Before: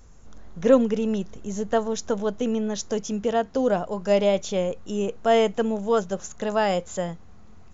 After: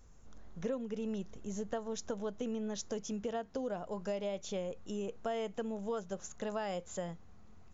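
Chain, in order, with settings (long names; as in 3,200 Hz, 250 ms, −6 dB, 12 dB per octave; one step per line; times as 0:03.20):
downward compressor 6 to 1, threshold −25 dBFS, peak gain reduction 13.5 dB
level −9 dB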